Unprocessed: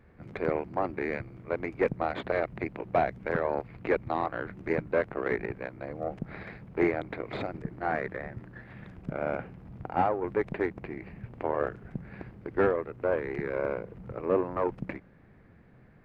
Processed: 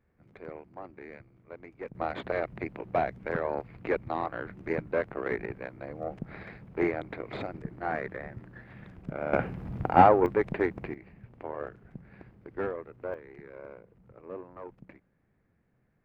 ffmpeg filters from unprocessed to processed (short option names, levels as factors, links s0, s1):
-af "asetnsamples=n=441:p=0,asendcmd='1.95 volume volume -2dB;9.33 volume volume 8.5dB;10.26 volume volume 2dB;10.94 volume volume -8dB;13.14 volume volume -15dB',volume=0.2"